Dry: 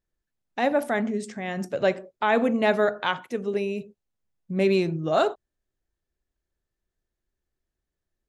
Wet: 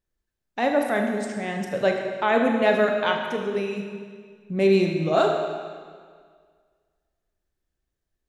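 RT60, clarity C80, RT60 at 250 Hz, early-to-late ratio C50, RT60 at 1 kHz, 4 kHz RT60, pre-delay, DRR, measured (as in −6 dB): 1.8 s, 5.0 dB, 1.8 s, 4.0 dB, 1.8 s, 1.7 s, 29 ms, 2.5 dB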